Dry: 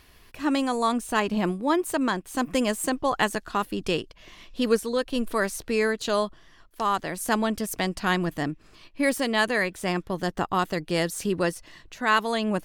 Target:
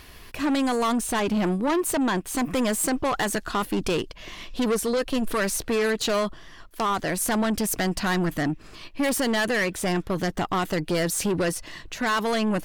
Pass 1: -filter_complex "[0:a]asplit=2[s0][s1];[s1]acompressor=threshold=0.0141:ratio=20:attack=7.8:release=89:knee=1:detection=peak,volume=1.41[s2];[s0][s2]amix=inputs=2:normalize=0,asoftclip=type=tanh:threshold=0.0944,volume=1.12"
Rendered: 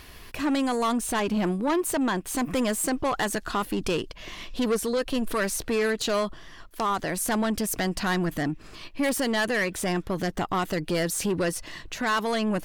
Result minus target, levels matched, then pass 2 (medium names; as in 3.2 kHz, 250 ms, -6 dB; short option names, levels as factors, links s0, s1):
compression: peak gain reduction +11 dB
-filter_complex "[0:a]asplit=2[s0][s1];[s1]acompressor=threshold=0.0531:ratio=20:attack=7.8:release=89:knee=1:detection=peak,volume=1.41[s2];[s0][s2]amix=inputs=2:normalize=0,asoftclip=type=tanh:threshold=0.0944,volume=1.12"